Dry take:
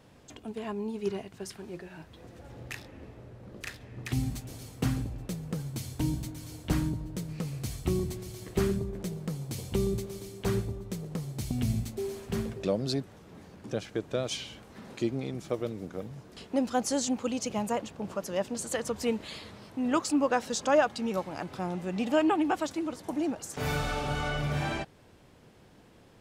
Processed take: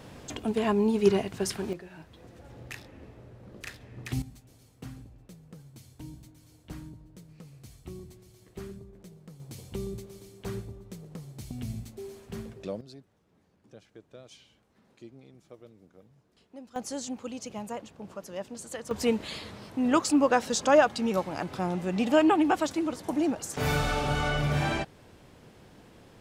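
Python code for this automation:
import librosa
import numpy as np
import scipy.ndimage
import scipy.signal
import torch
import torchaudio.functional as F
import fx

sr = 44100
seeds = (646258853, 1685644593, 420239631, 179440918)

y = fx.gain(x, sr, db=fx.steps((0.0, 10.0), (1.73, -1.5), (4.22, -14.0), (9.4, -7.0), (12.81, -18.0), (16.76, -6.5), (18.91, 3.5)))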